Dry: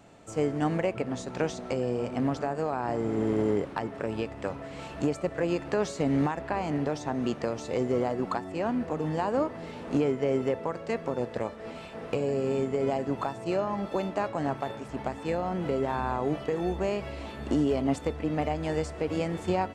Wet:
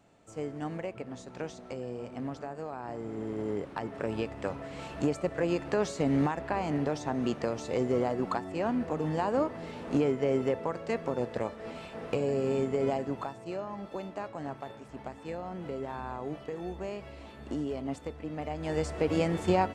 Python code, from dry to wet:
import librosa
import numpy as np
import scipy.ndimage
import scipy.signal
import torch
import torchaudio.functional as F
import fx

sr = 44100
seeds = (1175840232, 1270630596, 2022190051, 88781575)

y = fx.gain(x, sr, db=fx.line((3.34, -9.0), (4.04, -1.0), (12.87, -1.0), (13.48, -8.5), (18.4, -8.5), (18.94, 2.0)))